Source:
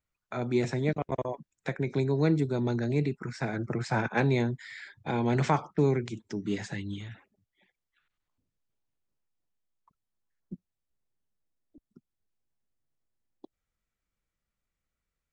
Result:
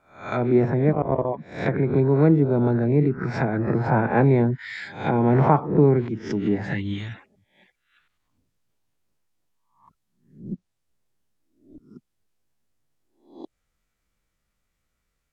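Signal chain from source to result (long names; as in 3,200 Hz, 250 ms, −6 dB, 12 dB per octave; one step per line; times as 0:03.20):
peak hold with a rise ahead of every peak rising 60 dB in 0.46 s
treble cut that deepens with the level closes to 1,100 Hz, closed at −26.5 dBFS
level +8 dB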